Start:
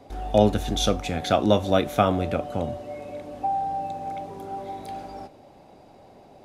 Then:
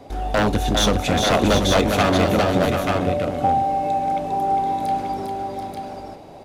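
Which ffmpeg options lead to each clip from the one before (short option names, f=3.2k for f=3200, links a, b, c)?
-filter_complex "[0:a]asplit=2[a][b];[b]alimiter=limit=-16.5dB:level=0:latency=1:release=81,volume=-1dB[c];[a][c]amix=inputs=2:normalize=0,aeval=exprs='0.251*(abs(mod(val(0)/0.251+3,4)-2)-1)':c=same,aecho=1:1:403|736|884:0.562|0.398|0.631,volume=1dB"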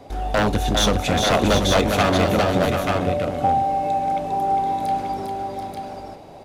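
-af "equalizer=f=290:w=1.5:g=-2"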